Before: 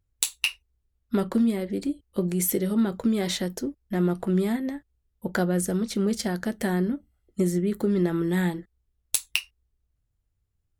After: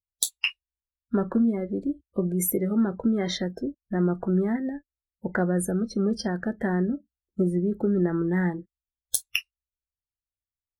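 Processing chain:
noise reduction from a noise print of the clip's start 26 dB

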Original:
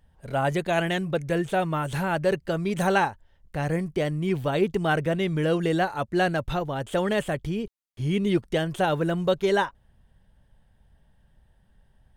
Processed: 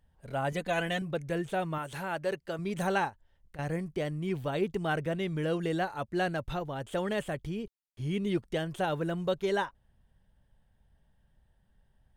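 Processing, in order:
0:00.52–0:01.02: comb filter 4 ms, depth 75%
0:01.78–0:02.59: low-shelf EQ 200 Hz −11 dB
0:03.09–0:03.59: downward compressor 6 to 1, threshold −41 dBFS, peak gain reduction 14 dB
level −7 dB

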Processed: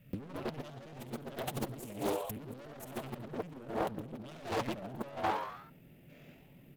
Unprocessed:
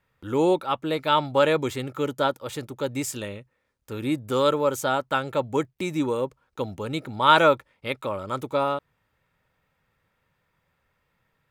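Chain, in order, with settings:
drawn EQ curve 100 Hz 0 dB, 230 Hz +10 dB, 330 Hz −12 dB, 600 Hz −2 dB, 870 Hz −24 dB, 1,700 Hz −14 dB, 2,700 Hz −3 dB, 3,900 Hz −12 dB, 6,800 Hz −10 dB, 13,000 Hz +5 dB
gain on a spectral selection 0:10.34–0:10.77, 230–7,500 Hz +10 dB
comb filter 6.8 ms, depth 45%
tube saturation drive 22 dB, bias 0.65
hard clipping −34.5 dBFS, distortion −6 dB
echo with shifted repeats 111 ms, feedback 59%, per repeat +97 Hz, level −5 dB
on a send at −17 dB: convolution reverb RT60 0.35 s, pre-delay 67 ms
on the sum: compressor whose output falls as the input rises −44 dBFS, ratio −0.5
tempo change 1.7×
highs frequency-modulated by the lows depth 0.79 ms
level +6.5 dB

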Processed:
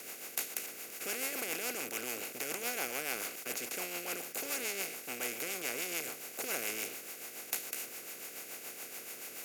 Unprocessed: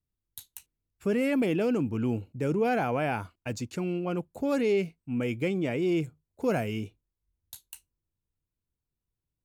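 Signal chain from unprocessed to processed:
compressor on every frequency bin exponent 0.2
rotating-speaker cabinet horn 7 Hz
in parallel at −10 dB: gain into a clipping stage and back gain 17 dB
on the sum: first difference

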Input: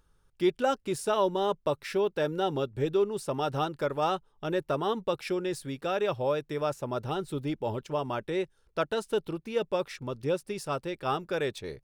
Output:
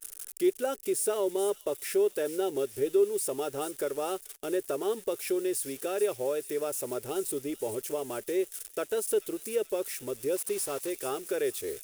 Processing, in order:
spike at every zero crossing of −31 dBFS
in parallel at +2.5 dB: downward compressor, threshold −34 dBFS, peak gain reduction 13.5 dB
on the sum: graphic EQ with 15 bands 160 Hz −11 dB, 400 Hz +9 dB, 1,000 Hz −8 dB, 4,000 Hz −5 dB, 10,000 Hz +7 dB
0:10.36–0:10.90: bit-depth reduction 6 bits, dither none
low-shelf EQ 180 Hz −6.5 dB
on a send: delay with a high-pass on its return 434 ms, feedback 58%, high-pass 3,700 Hz, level −9.5 dB
on the sum: noise gate −36 dBFS, range −22 dB
level −7.5 dB

